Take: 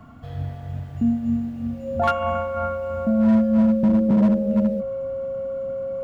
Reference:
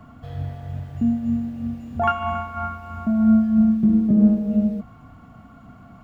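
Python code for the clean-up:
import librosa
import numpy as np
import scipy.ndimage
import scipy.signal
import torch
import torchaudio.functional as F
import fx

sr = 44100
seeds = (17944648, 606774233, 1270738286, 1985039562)

y = fx.fix_declip(x, sr, threshold_db=-13.0)
y = fx.notch(y, sr, hz=540.0, q=30.0)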